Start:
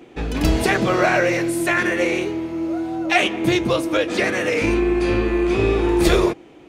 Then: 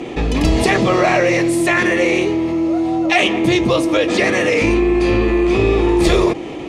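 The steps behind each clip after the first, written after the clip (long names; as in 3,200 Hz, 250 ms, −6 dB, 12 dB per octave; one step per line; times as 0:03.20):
low-pass filter 9,100 Hz 12 dB per octave
notch filter 1,500 Hz, Q 5.3
envelope flattener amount 50%
level +1.5 dB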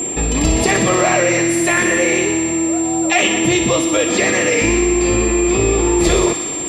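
steady tone 7,400 Hz −19 dBFS
delay with a high-pass on its return 61 ms, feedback 81%, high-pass 1,600 Hz, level −7 dB
level −1 dB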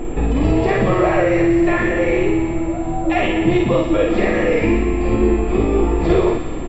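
background noise brown −26 dBFS
head-to-tape spacing loss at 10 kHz 41 dB
double-tracking delay 50 ms −2 dB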